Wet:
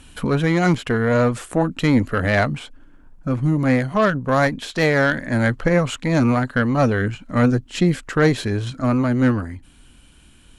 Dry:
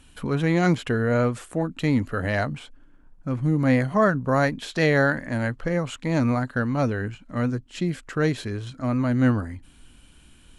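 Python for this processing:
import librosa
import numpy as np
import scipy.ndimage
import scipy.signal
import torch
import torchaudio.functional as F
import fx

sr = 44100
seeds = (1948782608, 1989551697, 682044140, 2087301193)

y = fx.cheby_harmonics(x, sr, harmonics=(6,), levels_db=(-22,), full_scale_db=-7.5)
y = fx.rider(y, sr, range_db=4, speed_s=0.5)
y = F.gain(torch.from_numpy(y), 5.0).numpy()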